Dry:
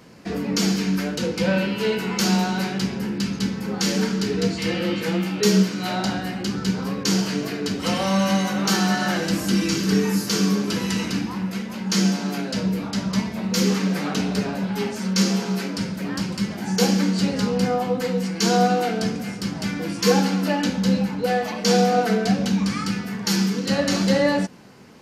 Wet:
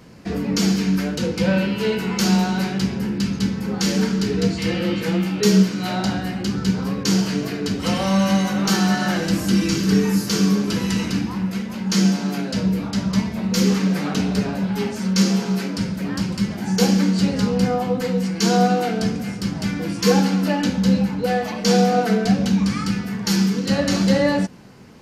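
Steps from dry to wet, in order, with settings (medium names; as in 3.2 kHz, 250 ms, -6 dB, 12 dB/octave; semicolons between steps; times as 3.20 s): bass shelf 130 Hz +10 dB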